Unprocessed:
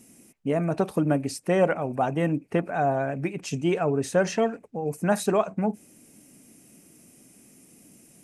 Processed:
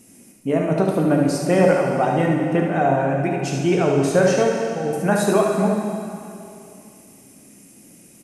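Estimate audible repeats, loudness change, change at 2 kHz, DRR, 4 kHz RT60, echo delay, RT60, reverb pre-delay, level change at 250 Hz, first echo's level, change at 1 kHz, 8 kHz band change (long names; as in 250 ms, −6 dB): 1, +6.5 dB, +6.5 dB, −0.5 dB, 2.4 s, 73 ms, 2.7 s, 7 ms, +7.0 dB, −6.0 dB, +6.0 dB, +6.5 dB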